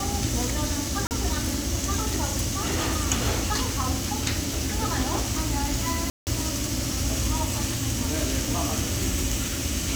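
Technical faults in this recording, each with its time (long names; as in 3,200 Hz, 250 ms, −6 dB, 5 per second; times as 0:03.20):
0:01.07–0:01.11: drop-out 39 ms
0:06.10–0:06.27: drop-out 169 ms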